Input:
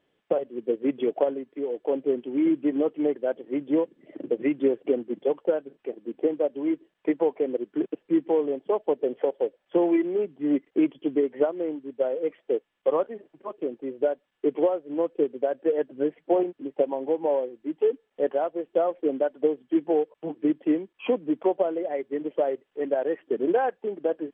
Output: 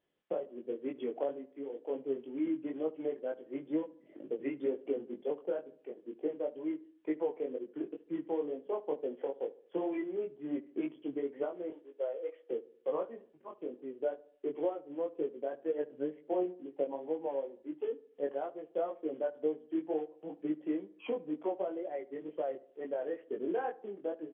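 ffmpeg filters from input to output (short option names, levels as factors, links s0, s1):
-filter_complex "[0:a]asettb=1/sr,asplit=3[s0][s1][s2];[s0]atrim=end=11.704[s3];[s1]atrim=start=11.7:end=12.51,asetpts=PTS-STARTPTS,afade=t=in:d=0.004:c=qsin,afade=t=out:st=0.806:d=0.004:c=qsin,highpass=f=390:w=0.5412,highpass=f=390:w=1.3066[s4];[s2]atrim=start=12.506[s5];[s3][s4]acrossfade=d=0.004:c1=hsin:c2=qsin[s6];[s6][s5]acrossfade=d=0.004:c1=qsin:c2=hsin,flanger=delay=19:depth=3.2:speed=2.1,asplit=2[s7][s8];[s8]adelay=72,lowpass=f=1300:p=1,volume=0.126,asplit=2[s9][s10];[s10]adelay=72,lowpass=f=1300:p=1,volume=0.51,asplit=2[s11][s12];[s12]adelay=72,lowpass=f=1300:p=1,volume=0.51,asplit=2[s13][s14];[s14]adelay=72,lowpass=f=1300:p=1,volume=0.51[s15];[s9][s11][s13][s15]amix=inputs=4:normalize=0[s16];[s7][s16]amix=inputs=2:normalize=0,volume=0.398"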